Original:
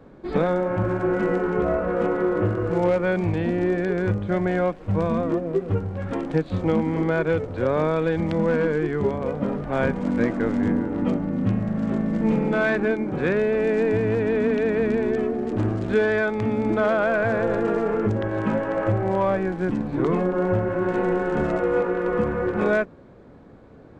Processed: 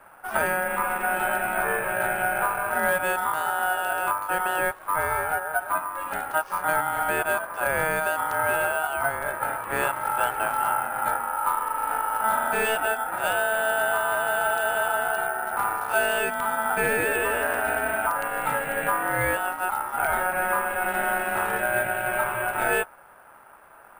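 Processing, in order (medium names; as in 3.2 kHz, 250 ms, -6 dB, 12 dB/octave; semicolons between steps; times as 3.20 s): ring modulator 1.1 kHz; careless resampling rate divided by 4×, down none, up hold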